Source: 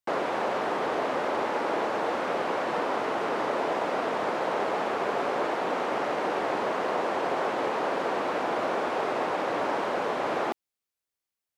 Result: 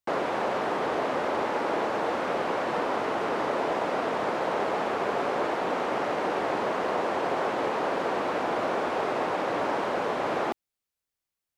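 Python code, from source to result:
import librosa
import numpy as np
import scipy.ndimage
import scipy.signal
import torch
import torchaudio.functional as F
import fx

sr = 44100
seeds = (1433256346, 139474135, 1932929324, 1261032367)

y = fx.low_shelf(x, sr, hz=120.0, db=7.5)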